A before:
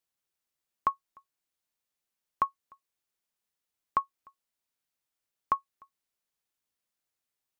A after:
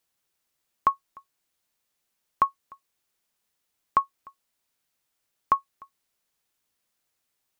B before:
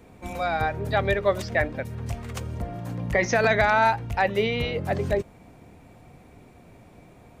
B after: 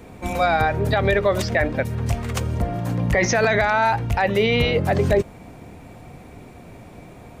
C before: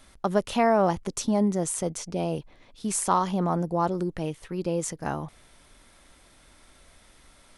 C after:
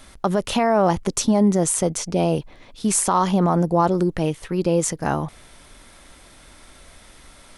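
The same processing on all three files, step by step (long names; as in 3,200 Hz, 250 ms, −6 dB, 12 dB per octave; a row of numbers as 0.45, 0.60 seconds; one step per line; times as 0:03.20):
brickwall limiter −17.5 dBFS
normalise the peak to −9 dBFS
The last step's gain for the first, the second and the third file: +8.5, +8.5, +8.5 decibels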